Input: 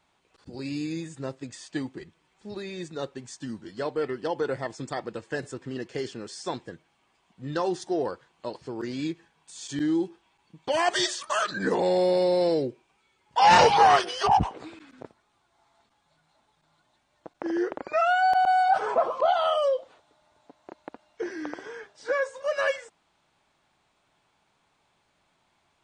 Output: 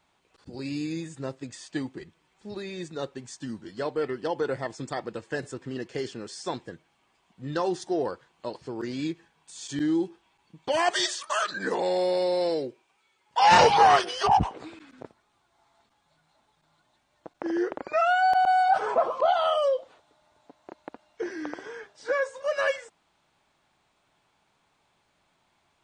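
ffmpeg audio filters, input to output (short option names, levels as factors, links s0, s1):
-filter_complex "[0:a]asettb=1/sr,asplit=3[s0][s1][s2];[s0]atrim=end=10.914[s3];[s1]atrim=start=10.91:end=13.52,asetpts=PTS-STARTPTS,afade=t=in:d=0.004:c=qsin,afade=t=out:st=2.606:d=0.004:c=qsin,lowshelf=f=270:g=-11.5[s4];[s2]atrim=start=13.516[s5];[s3][s4]acrossfade=d=0.004:c1=hsin:c2=qsin[s6];[s6][s5]acrossfade=d=0.004:c1=qsin:c2=hsin"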